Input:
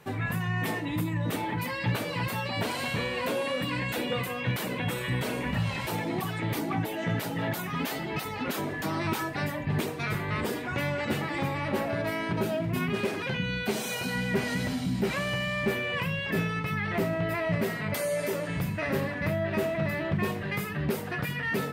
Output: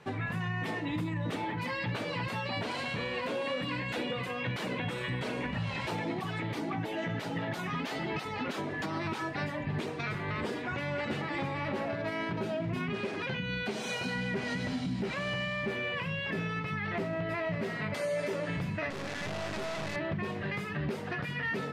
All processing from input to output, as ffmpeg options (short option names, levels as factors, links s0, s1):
-filter_complex "[0:a]asettb=1/sr,asplit=3[s0][s1][s2];[s0]atrim=end=18.904[s3];[s1]atrim=start=18.9:end=19.96,asetpts=PTS-STARTPTS,afade=t=in:d=0.004:c=qsin,afade=t=out:st=1.056:d=0.004:c=qsin,bandreject=f=1300:w=17,asoftclip=type=hard:threshold=0.0355,acrusher=bits=3:dc=4:mix=0:aa=0.000001[s4];[s2]atrim=start=19.956[s5];[s3][s4]acrossfade=d=0.004:c1=hsin:c2=qsin[s6];[s6][s5]acrossfade=d=0.004:c1=qsin:c2=hsin,lowpass=5600,lowshelf=f=73:g=-6,alimiter=level_in=1.12:limit=0.0631:level=0:latency=1:release=222,volume=0.891"